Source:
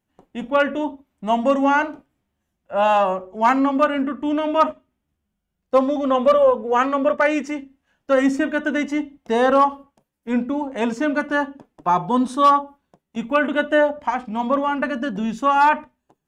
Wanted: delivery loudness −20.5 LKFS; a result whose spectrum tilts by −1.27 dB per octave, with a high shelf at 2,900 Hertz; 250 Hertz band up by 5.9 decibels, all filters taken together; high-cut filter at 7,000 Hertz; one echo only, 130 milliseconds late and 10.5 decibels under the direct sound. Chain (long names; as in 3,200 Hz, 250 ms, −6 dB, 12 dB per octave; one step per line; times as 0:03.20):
low-pass filter 7,000 Hz
parametric band 250 Hz +6.5 dB
high-shelf EQ 2,900 Hz −4 dB
single-tap delay 130 ms −10.5 dB
level −3 dB